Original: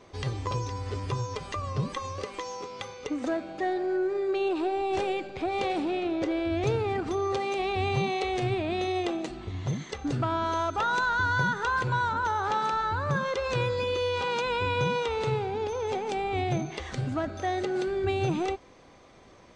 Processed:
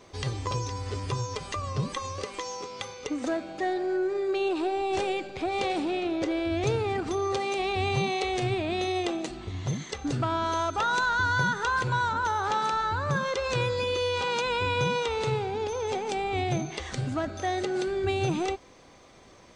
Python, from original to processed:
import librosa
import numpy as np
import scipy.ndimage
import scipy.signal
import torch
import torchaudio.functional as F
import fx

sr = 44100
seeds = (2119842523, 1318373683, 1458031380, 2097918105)

y = fx.high_shelf(x, sr, hz=4500.0, db=8.0)